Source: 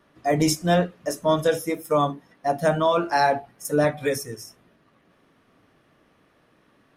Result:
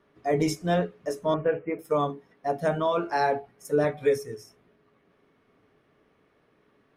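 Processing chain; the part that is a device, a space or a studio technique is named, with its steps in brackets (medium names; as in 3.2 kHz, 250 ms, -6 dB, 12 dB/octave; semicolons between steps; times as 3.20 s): 1.34–1.79 s: steep low-pass 2.8 kHz 96 dB/octave; inside a helmet (treble shelf 5.3 kHz -8.5 dB; small resonant body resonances 420/2200 Hz, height 11 dB, ringing for 95 ms); trim -5 dB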